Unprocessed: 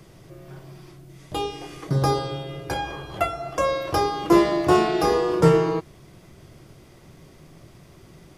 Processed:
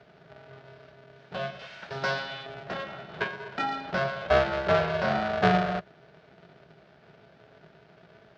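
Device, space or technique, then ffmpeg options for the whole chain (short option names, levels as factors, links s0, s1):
ring modulator pedal into a guitar cabinet: -filter_complex "[0:a]asettb=1/sr,asplit=3[s0][s1][s2];[s0]atrim=end=1.594[s3];[s1]atrim=start=1.59:end=2.46,asetpts=PTS-STARTPTS,afade=t=in:d=0.004:c=qsin,afade=t=out:st=0.866:d=0.004:c=qsin,tiltshelf=f=740:g=-9.5[s4];[s2]atrim=start=2.456[s5];[s3][s4]acrossfade=d=0.004:c1=hsin:c2=qsin[s6];[s6][s5]acrossfade=d=0.004:c1=qsin:c2=hsin,aeval=exprs='val(0)*sgn(sin(2*PI*270*n/s))':c=same,highpass=89,equalizer=f=96:t=q:w=4:g=-7,equalizer=f=170:t=q:w=4:g=7,equalizer=f=280:t=q:w=4:g=-6,equalizer=f=660:t=q:w=4:g=7,equalizer=f=990:t=q:w=4:g=-5,equalizer=f=1500:t=q:w=4:g=7,lowpass=f=4300:w=0.5412,lowpass=f=4300:w=1.3066,volume=0.398"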